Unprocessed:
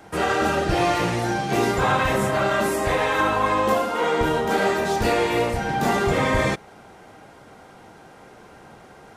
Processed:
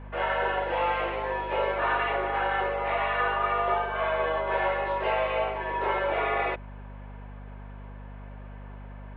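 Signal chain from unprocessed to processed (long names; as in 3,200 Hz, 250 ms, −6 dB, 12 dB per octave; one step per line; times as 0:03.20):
single-sideband voice off tune +170 Hz 210–2,900 Hz
mains hum 50 Hz, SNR 13 dB
level −5.5 dB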